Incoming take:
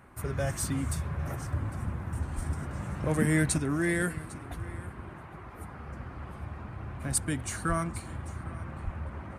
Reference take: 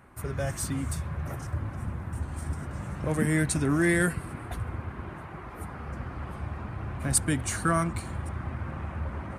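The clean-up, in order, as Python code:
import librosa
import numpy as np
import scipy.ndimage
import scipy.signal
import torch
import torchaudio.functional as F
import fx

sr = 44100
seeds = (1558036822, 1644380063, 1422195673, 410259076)

y = fx.highpass(x, sr, hz=140.0, slope=24, at=(2.35, 2.47), fade=0.02)
y = fx.highpass(y, sr, hz=140.0, slope=24, at=(7.68, 7.8), fade=0.02)
y = fx.highpass(y, sr, hz=140.0, slope=24, at=(8.84, 8.96), fade=0.02)
y = fx.fix_echo_inverse(y, sr, delay_ms=803, level_db=-19.5)
y = fx.fix_level(y, sr, at_s=3.58, step_db=4.5)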